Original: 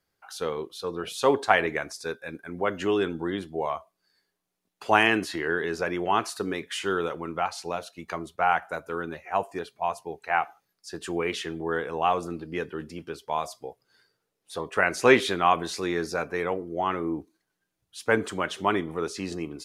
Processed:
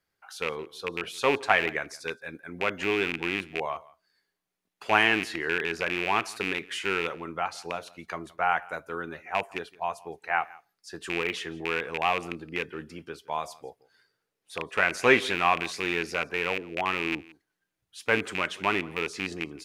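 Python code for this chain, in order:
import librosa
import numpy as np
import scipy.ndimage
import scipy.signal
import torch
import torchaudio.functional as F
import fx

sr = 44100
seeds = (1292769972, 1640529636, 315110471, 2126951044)

p1 = fx.rattle_buzz(x, sr, strikes_db=-34.0, level_db=-16.0)
p2 = fx.peak_eq(p1, sr, hz=2000.0, db=4.5, octaves=1.4)
p3 = p2 + fx.echo_single(p2, sr, ms=169, db=-22.5, dry=0)
y = p3 * librosa.db_to_amplitude(-4.0)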